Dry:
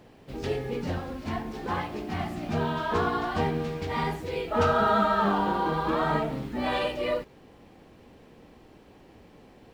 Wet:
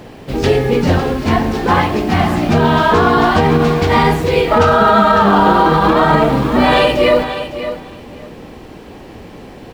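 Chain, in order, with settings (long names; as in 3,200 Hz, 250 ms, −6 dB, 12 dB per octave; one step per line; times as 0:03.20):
repeating echo 556 ms, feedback 16%, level −12 dB
boost into a limiter +19 dB
level −1 dB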